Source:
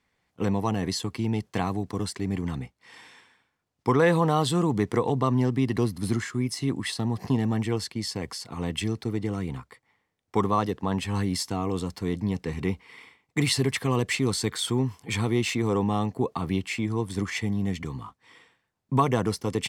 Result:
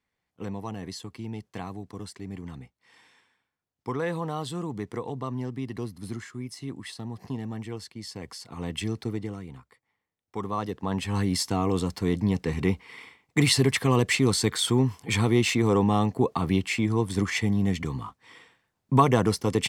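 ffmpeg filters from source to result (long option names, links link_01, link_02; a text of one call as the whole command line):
ffmpeg -i in.wav -af "volume=11.5dB,afade=type=in:start_time=7.95:duration=1.1:silence=0.398107,afade=type=out:start_time=9.05:duration=0.38:silence=0.375837,afade=type=in:start_time=10.37:duration=1.18:silence=0.237137" out.wav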